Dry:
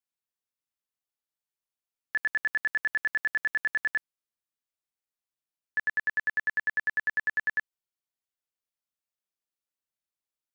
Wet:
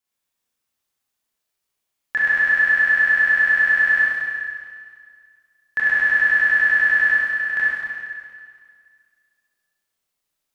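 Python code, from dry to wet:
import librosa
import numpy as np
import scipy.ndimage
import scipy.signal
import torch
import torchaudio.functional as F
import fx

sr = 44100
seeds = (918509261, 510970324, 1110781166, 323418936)

y = fx.level_steps(x, sr, step_db=12, at=(7.1, 7.5))
y = fx.rev_schroeder(y, sr, rt60_s=2.0, comb_ms=29, drr_db=-6.5)
y = F.gain(torch.from_numpy(y), 6.0).numpy()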